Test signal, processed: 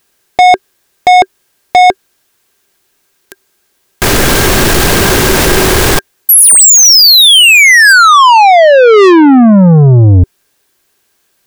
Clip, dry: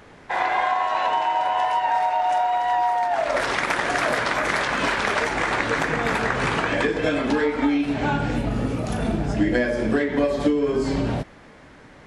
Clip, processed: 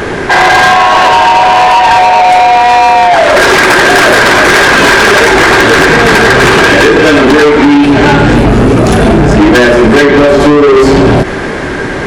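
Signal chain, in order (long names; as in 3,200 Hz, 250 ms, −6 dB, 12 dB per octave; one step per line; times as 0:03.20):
hollow resonant body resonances 380/1,600 Hz, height 10 dB, ringing for 45 ms
soft clipping −25.5 dBFS
boost into a limiter +31.5 dB
level −1 dB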